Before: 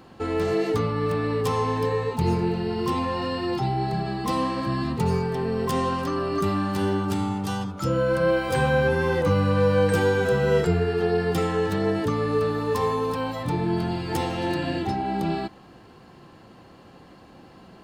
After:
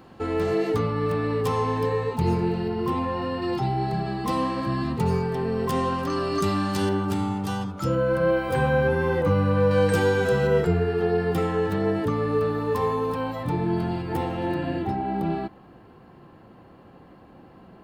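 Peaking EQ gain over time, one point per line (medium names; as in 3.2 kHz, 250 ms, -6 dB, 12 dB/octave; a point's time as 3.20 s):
peaking EQ 6.1 kHz 1.9 oct
-4 dB
from 2.68 s -11.5 dB
from 3.42 s -3.5 dB
from 6.10 s +6.5 dB
from 6.89 s -3 dB
from 7.95 s -10 dB
from 9.71 s +0.5 dB
from 10.47 s -8.5 dB
from 14.02 s -15 dB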